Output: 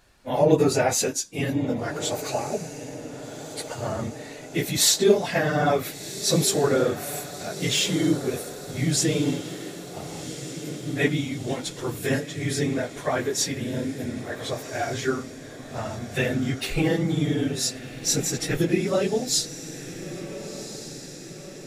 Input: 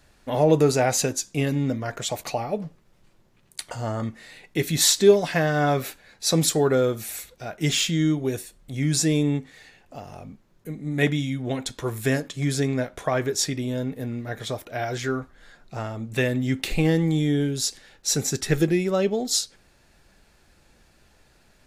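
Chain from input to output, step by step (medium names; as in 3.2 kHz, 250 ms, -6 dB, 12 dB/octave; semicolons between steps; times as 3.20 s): phase randomisation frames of 50 ms; bass shelf 190 Hz -4.5 dB; echo that smears into a reverb 1454 ms, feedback 58%, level -12.5 dB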